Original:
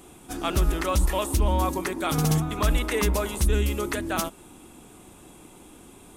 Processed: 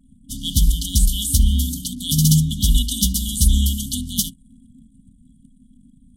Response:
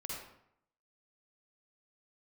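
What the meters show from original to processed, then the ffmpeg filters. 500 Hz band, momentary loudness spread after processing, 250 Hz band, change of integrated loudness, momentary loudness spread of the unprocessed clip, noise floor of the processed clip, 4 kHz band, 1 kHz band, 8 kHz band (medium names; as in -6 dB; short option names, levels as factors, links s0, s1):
under -35 dB, 9 LU, +5.0 dB, +6.0 dB, 5 LU, -53 dBFS, +11.0 dB, under -40 dB, +11.5 dB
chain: -filter_complex "[0:a]bandreject=f=60:t=h:w=6,bandreject=f=120:t=h:w=6,bandreject=f=180:t=h:w=6,asplit=2[s0][s1];[1:a]atrim=start_sample=2205,atrim=end_sample=3969[s2];[s1][s2]afir=irnorm=-1:irlink=0,volume=0.2[s3];[s0][s3]amix=inputs=2:normalize=0,anlmdn=0.1,afftfilt=real='re*(1-between(b*sr/4096,270,2900))':imag='im*(1-between(b*sr/4096,270,2900))':win_size=4096:overlap=0.75,adynamicequalizer=threshold=0.00708:dfrequency=1800:dqfactor=0.7:tfrequency=1800:tqfactor=0.7:attack=5:release=100:ratio=0.375:range=2:mode=boostabove:tftype=highshelf,volume=2.24"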